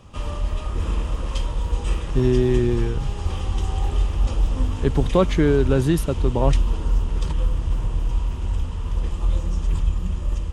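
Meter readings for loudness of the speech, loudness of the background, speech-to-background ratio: −21.5 LKFS, −26.0 LKFS, 4.5 dB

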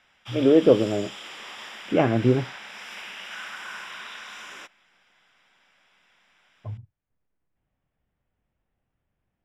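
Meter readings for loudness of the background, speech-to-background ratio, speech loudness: −38.0 LKFS, 16.5 dB, −21.5 LKFS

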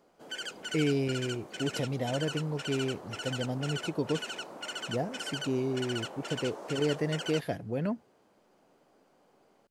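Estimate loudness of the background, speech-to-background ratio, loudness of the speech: −39.0 LKFS, 5.5 dB, −33.5 LKFS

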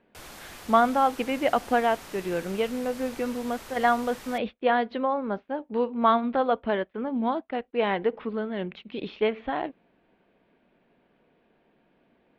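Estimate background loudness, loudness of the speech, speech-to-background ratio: −43.5 LKFS, −27.0 LKFS, 16.5 dB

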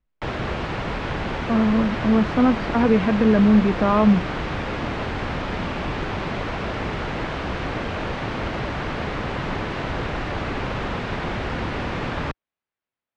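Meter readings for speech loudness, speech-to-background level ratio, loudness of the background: −19.0 LKFS, 8.5 dB, −27.5 LKFS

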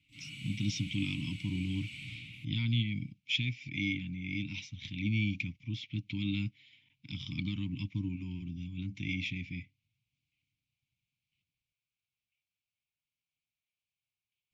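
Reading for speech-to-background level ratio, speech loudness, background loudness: 9.5 dB, −36.0 LKFS, −45.5 LKFS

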